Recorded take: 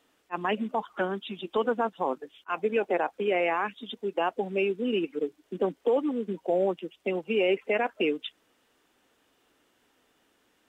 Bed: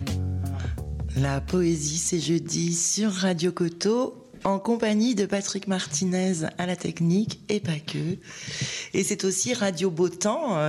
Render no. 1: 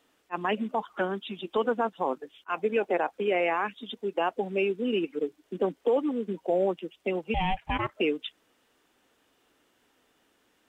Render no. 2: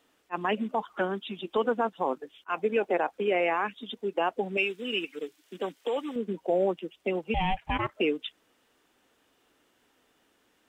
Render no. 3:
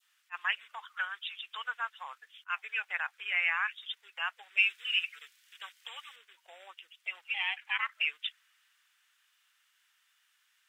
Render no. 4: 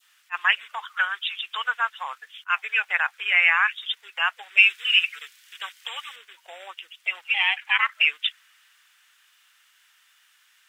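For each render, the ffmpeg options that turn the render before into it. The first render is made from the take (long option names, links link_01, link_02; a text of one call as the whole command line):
ffmpeg -i in.wav -filter_complex "[0:a]asettb=1/sr,asplit=3[link_01][link_02][link_03];[link_01]atrim=end=7.344[link_04];[link_02]atrim=start=7.34:end=7.92,asetpts=PTS-STARTPTS,afade=type=in:duration=0.004:curve=qsin,afade=type=out:start_time=0.576:duration=0.004:curve=qsin,aeval=exprs='val(0)*sin(2*PI*370*n/s)':channel_layout=same[link_05];[link_03]atrim=start=7.916[link_06];[link_04][link_05]acrossfade=duration=0.004:curve1=hsin:curve2=qsin[link_07];[link_07][link_06]acrossfade=duration=0.004:curve1=qsin:curve2=hsin" out.wav
ffmpeg -i in.wav -filter_complex "[0:a]asettb=1/sr,asplit=3[link_01][link_02][link_03];[link_01]atrim=end=4.574[link_04];[link_02]atrim=start=4.57:end=6.16,asetpts=PTS-STARTPTS,afade=type=in:duration=0.004:curve=qsin,afade=type=out:start_time=1.586:duration=0.004:curve=qsin,tiltshelf=frequency=1100:gain=-9[link_05];[link_03]atrim=start=6.156[link_06];[link_04][link_05]acrossfade=duration=0.004:curve1=hsin:curve2=qsin[link_07];[link_07][link_06]acrossfade=duration=0.004:curve1=qsin:curve2=hsin" out.wav
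ffmpeg -i in.wav -af "highpass=frequency=1400:width=0.5412,highpass=frequency=1400:width=1.3066,adynamicequalizer=threshold=0.00562:dfrequency=1800:dqfactor=0.88:tfrequency=1800:tqfactor=0.88:attack=5:release=100:ratio=0.375:range=2.5:mode=boostabove:tftype=bell" out.wav
ffmpeg -i in.wav -af "volume=11dB,alimiter=limit=-3dB:level=0:latency=1" out.wav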